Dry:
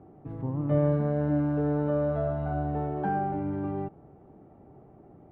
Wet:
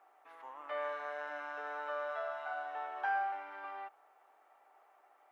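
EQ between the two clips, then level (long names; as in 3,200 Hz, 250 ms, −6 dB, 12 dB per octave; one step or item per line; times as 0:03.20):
Bessel high-pass filter 1,500 Hz, order 4
+8.0 dB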